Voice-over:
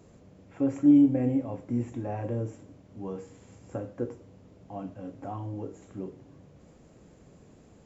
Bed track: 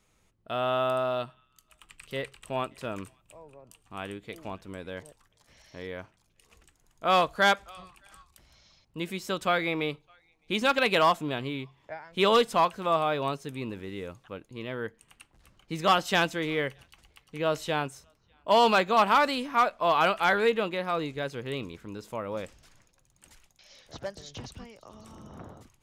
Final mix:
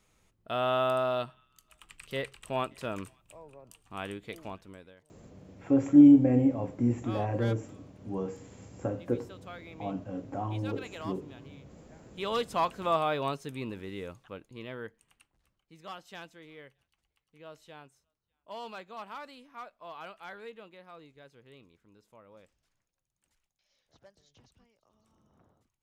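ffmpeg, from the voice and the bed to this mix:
-filter_complex "[0:a]adelay=5100,volume=2.5dB[a];[1:a]volume=17.5dB,afade=t=out:st=4.31:d=0.65:silence=0.105925,afade=t=in:st=12.06:d=0.82:silence=0.125893,afade=t=out:st=14.12:d=1.52:silence=0.112202[b];[a][b]amix=inputs=2:normalize=0"

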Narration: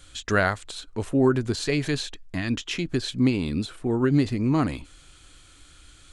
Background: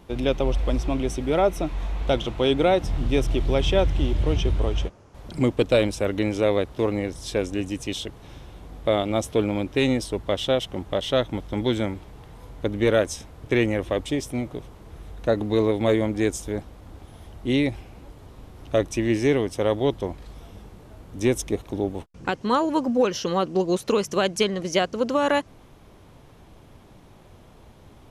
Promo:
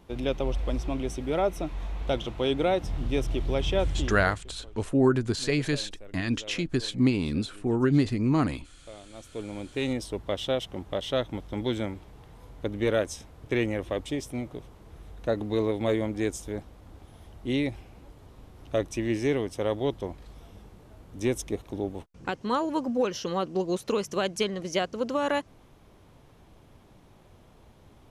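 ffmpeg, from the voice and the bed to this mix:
-filter_complex "[0:a]adelay=3800,volume=-1.5dB[a];[1:a]volume=13.5dB,afade=t=out:st=3.99:d=0.4:silence=0.112202,afade=t=in:st=9.13:d=0.98:silence=0.112202[b];[a][b]amix=inputs=2:normalize=0"

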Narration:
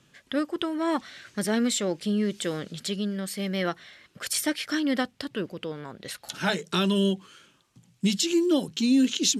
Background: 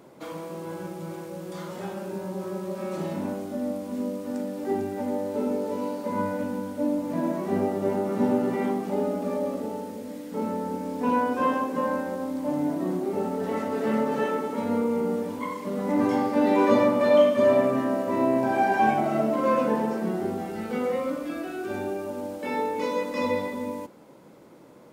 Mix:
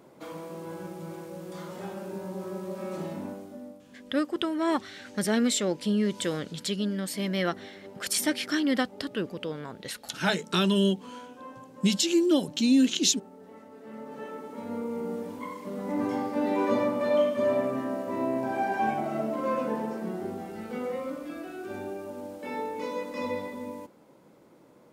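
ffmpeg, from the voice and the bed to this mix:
-filter_complex "[0:a]adelay=3800,volume=0dB[a];[1:a]volume=11dB,afade=t=out:st=2.95:d=0.86:silence=0.141254,afade=t=in:st=13.84:d=1.41:silence=0.188365[b];[a][b]amix=inputs=2:normalize=0"

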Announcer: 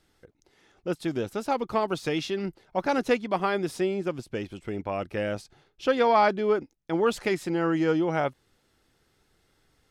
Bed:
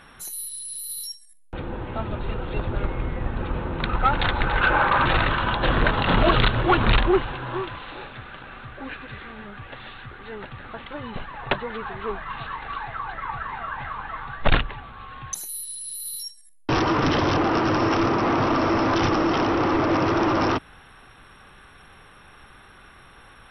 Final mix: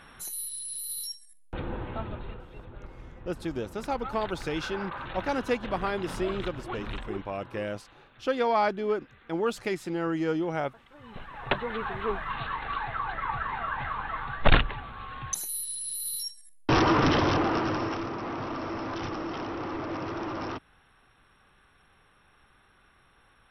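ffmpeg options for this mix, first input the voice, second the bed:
-filter_complex "[0:a]adelay=2400,volume=-4dB[a];[1:a]volume=15.5dB,afade=t=out:st=1.71:d=0.77:silence=0.158489,afade=t=in:st=10.96:d=0.81:silence=0.125893,afade=t=out:st=16.9:d=1.14:silence=0.237137[b];[a][b]amix=inputs=2:normalize=0"

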